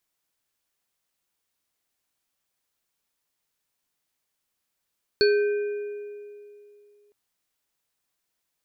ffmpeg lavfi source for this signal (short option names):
-f lavfi -i "aevalsrc='0.168*pow(10,-3*t/2.65)*sin(2*PI*413*t)+0.0531*pow(10,-3*t/1.51)*sin(2*PI*1550*t)+0.0211*pow(10,-3*t/2.11)*sin(2*PI*2440*t)+0.106*pow(10,-3*t/0.29)*sin(2*PI*4420*t)':d=1.91:s=44100"